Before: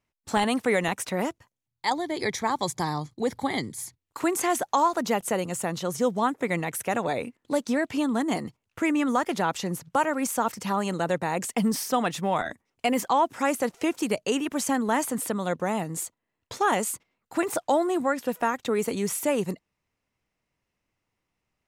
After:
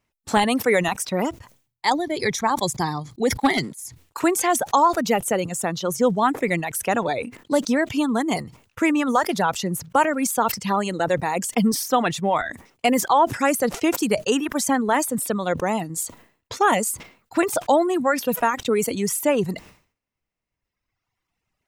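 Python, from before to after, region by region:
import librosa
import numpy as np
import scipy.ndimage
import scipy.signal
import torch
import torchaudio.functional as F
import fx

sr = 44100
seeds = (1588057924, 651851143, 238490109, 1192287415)

y = fx.chain(x, sr, fx.highpass(hz=150.0, slope=24),
    fx.leveller(passes=2),
    fx.upward_expand(threshold_db=-34.0, expansion=2.5), at=(3.39, 3.85))
y = fx.dereverb_blind(y, sr, rt60_s=1.8)
y = fx.sustainer(y, sr, db_per_s=130.0)
y = y * 10.0 ** (5.5 / 20.0)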